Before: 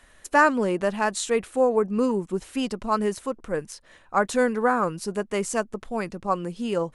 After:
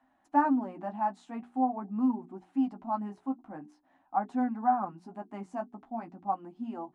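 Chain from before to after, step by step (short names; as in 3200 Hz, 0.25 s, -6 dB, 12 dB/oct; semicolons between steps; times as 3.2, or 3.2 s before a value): flange 0.45 Hz, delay 7.5 ms, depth 8.1 ms, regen -19%; double band-pass 460 Hz, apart 1.5 oct; notches 60/120/180/240/300/360/420 Hz; gain +5 dB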